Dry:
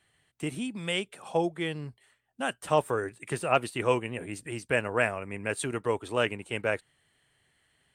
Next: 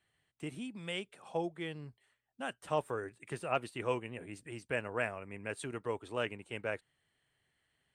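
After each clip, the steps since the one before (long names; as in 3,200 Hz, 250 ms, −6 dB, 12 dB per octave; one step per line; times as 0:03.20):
high-shelf EQ 8,600 Hz −7.5 dB
level −8.5 dB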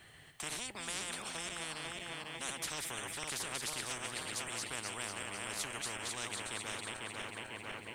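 feedback delay that plays each chunk backwards 249 ms, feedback 63%, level −7 dB
every bin compressed towards the loudest bin 10 to 1
level −4.5 dB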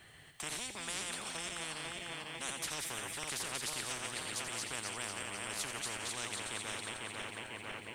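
delay with a high-pass on its return 86 ms, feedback 63%, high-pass 2,500 Hz, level −9 dB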